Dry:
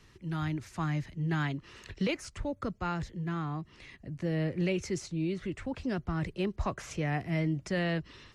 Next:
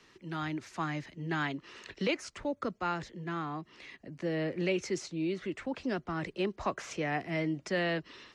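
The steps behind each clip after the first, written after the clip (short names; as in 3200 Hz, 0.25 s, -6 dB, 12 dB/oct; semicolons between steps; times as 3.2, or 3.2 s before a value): three-band isolator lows -18 dB, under 210 Hz, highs -12 dB, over 7800 Hz; gain +2 dB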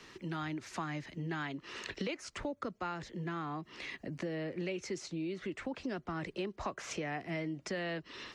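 compressor 4:1, threshold -44 dBFS, peak gain reduction 15 dB; gain +6.5 dB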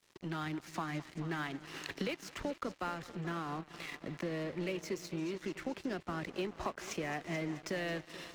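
multi-head echo 0.216 s, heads first and second, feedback 59%, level -16 dB; crossover distortion -50 dBFS; gain +1.5 dB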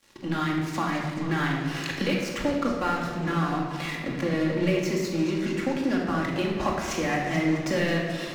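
shoebox room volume 1200 m³, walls mixed, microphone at 2.3 m; gain +7.5 dB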